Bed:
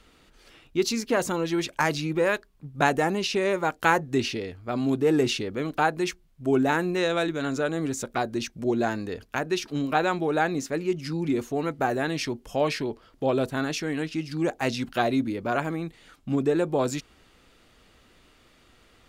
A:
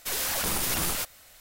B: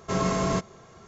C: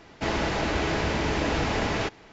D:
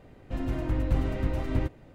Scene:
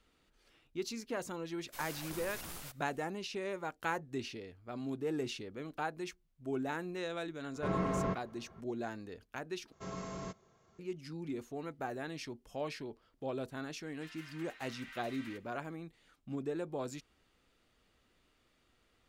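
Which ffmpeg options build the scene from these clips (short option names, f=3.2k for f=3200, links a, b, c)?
-filter_complex "[2:a]asplit=2[a][b];[0:a]volume=-14.5dB[c];[1:a]equalizer=f=12k:t=o:w=2.9:g=-2.5[d];[a]lowpass=2.1k[e];[4:a]highpass=f=1.5k:w=0.5412,highpass=f=1.5k:w=1.3066[f];[c]asplit=2[g][h];[g]atrim=end=9.724[i];[b]atrim=end=1.07,asetpts=PTS-STARTPTS,volume=-17.5dB[j];[h]atrim=start=10.786[k];[d]atrim=end=1.4,asetpts=PTS-STARTPTS,volume=-16.5dB,afade=t=in:d=0.004:c=hsin,afade=t=out:st=1.396:d=0.004:c=hsin,adelay=1670[l];[e]atrim=end=1.07,asetpts=PTS-STARTPTS,volume=-8dB,afade=t=in:d=0.004:c=hsin,afade=t=out:st=1.066:d=0.004:c=hsin,adelay=332514S[m];[f]atrim=end=1.94,asetpts=PTS-STARTPTS,volume=-4dB,afade=t=in:d=0.004:c=hsin,afade=t=out:st=1.936:d=0.004:c=hsin,adelay=13700[n];[i][j]acrossfade=d=0.004:c1=hsin:c2=hsin[o];[o][k]acrossfade=d=0.004:c1=hsin:c2=hsin[p];[p][l][m][n]amix=inputs=4:normalize=0"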